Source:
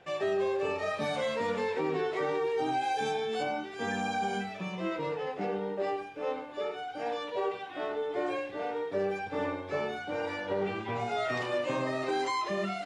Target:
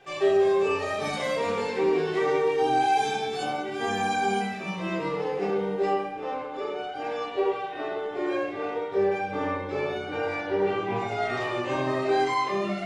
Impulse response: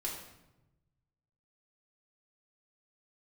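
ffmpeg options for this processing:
-filter_complex "[0:a]asetnsamples=nb_out_samples=441:pad=0,asendcmd='5.89 highshelf g -3.5',highshelf=frequency=5600:gain=7[link_01];[1:a]atrim=start_sample=2205,asetrate=48510,aresample=44100[link_02];[link_01][link_02]afir=irnorm=-1:irlink=0,volume=3.5dB"

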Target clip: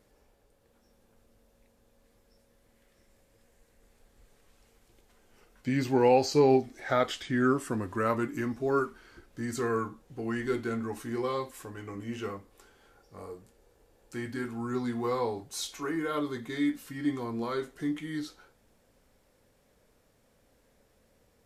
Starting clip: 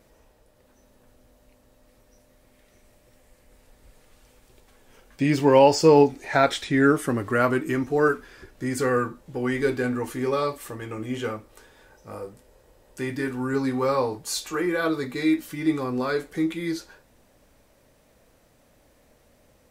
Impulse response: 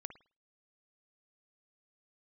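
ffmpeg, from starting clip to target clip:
-af "asetrate=40517,aresample=44100,volume=-7dB"

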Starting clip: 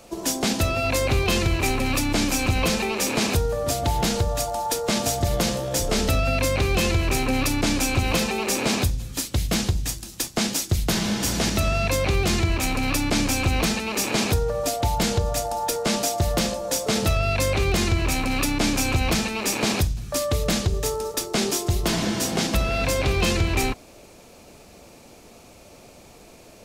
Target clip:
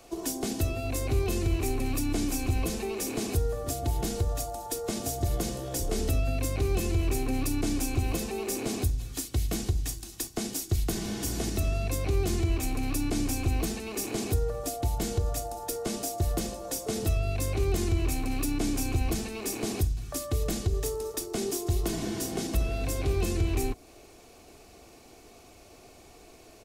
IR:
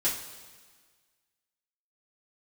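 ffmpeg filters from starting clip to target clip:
-filter_complex "[0:a]aecho=1:1:2.7:0.46,acrossover=split=520|7100[link_01][link_02][link_03];[link_02]acompressor=threshold=-35dB:ratio=6[link_04];[link_01][link_04][link_03]amix=inputs=3:normalize=0,volume=-5.5dB"

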